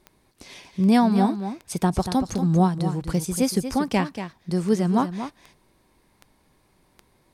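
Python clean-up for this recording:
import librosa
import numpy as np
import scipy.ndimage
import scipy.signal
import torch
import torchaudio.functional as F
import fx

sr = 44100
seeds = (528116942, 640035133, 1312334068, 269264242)

y = fx.fix_declick_ar(x, sr, threshold=10.0)
y = fx.fix_echo_inverse(y, sr, delay_ms=235, level_db=-10.0)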